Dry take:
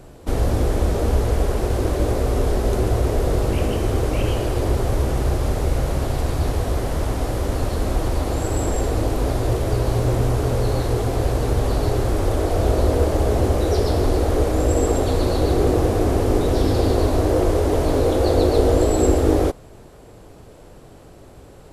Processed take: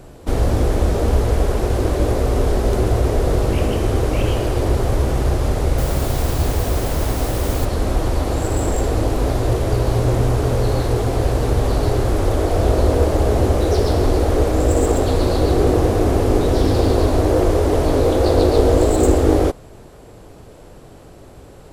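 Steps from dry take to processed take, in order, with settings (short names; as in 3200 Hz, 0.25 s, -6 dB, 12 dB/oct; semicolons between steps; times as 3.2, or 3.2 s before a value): self-modulated delay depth 0.12 ms; 5.78–7.65 requantised 6-bit, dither triangular; gain +2.5 dB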